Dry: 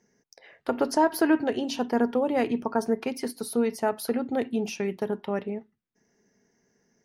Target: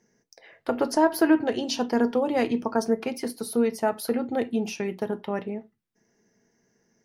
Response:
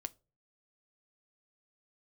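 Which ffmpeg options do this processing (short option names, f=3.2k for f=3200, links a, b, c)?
-filter_complex "[0:a]asettb=1/sr,asplit=3[a][b][c];[a]atrim=end=1.394[d];[b]atrim=start=1.39:end=2.88,asetpts=PTS-STARTPTS,afade=t=in:d=0.004:c=qsin,afade=t=out:st=1.486:d=0.004:c=qsin,adynamicequalizer=threshold=0.00282:dfrequency=5200:dqfactor=1.1:tfrequency=5200:tqfactor=1.1:attack=5:release=100:ratio=0.375:range=3:mode=boostabove:tftype=bell[e];[c]atrim=start=2.876[f];[d][e]acrossfade=d=0.004:c1=hsin:c2=qsin[g];[g][f]acrossfade=d=0.004:c1=qsin:c2=hsin[h];[1:a]atrim=start_sample=2205,atrim=end_sample=3969[i];[h][i]afir=irnorm=-1:irlink=0,volume=3.5dB"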